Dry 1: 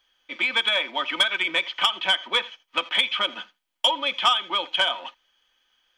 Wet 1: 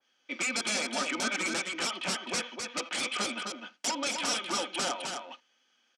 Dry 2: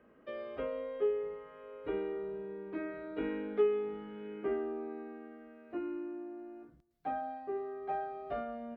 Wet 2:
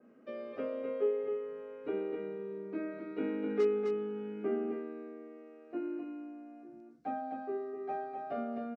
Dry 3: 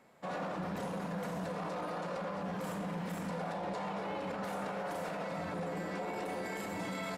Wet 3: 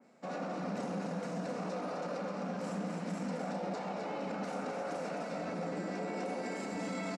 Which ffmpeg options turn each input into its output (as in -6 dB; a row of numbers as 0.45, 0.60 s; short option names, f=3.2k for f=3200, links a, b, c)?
-af "aeval=exprs='0.075*(abs(mod(val(0)/0.075+3,4)-2)-1)':c=same,highpass=180,equalizer=f=240:t=q:w=4:g=9,equalizer=f=1k:t=q:w=4:g=-7,equalizer=f=1.8k:t=q:w=4:g=-5,equalizer=f=3.3k:t=q:w=4:g=-7,equalizer=f=5.6k:t=q:w=4:g=4,lowpass=f=8.5k:w=0.5412,lowpass=f=8.5k:w=1.3066,aecho=1:1:258:0.562,adynamicequalizer=threshold=0.00794:dfrequency=2200:dqfactor=0.7:tfrequency=2200:tqfactor=0.7:attack=5:release=100:ratio=0.375:range=1.5:mode=cutabove:tftype=highshelf"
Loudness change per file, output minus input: -8.5, +1.0, +0.5 LU